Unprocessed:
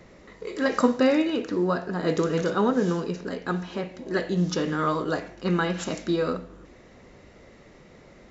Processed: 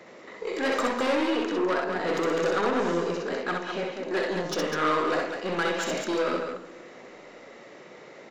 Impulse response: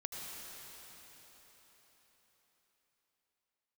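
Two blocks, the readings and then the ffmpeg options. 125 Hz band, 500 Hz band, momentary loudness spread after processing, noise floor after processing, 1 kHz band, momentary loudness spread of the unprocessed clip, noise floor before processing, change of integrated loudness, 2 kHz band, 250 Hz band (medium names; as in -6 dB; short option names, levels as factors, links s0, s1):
-10.5 dB, -0.5 dB, 22 LU, -48 dBFS, +1.5 dB, 10 LU, -52 dBFS, -1.5 dB, +3.0 dB, -5.0 dB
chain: -filter_complex "[0:a]highpass=140,aeval=exprs='(tanh(22.4*val(0)+0.25)-tanh(0.25))/22.4':c=same,bass=f=250:g=-13,treble=f=4000:g=-4,aecho=1:1:64.14|201.2:0.708|0.501,asplit=2[s0][s1];[1:a]atrim=start_sample=2205[s2];[s1][s2]afir=irnorm=-1:irlink=0,volume=0.106[s3];[s0][s3]amix=inputs=2:normalize=0,volume=1.68"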